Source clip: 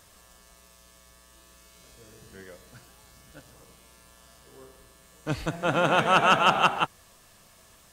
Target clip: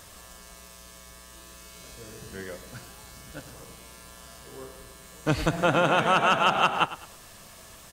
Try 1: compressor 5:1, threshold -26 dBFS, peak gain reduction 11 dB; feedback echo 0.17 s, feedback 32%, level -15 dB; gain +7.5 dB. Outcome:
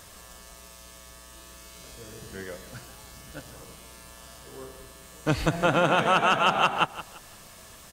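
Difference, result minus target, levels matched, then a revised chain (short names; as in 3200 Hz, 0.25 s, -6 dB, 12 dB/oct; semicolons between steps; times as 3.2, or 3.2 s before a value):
echo 65 ms late
compressor 5:1, threshold -26 dBFS, peak gain reduction 11 dB; feedback echo 0.105 s, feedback 32%, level -15 dB; gain +7.5 dB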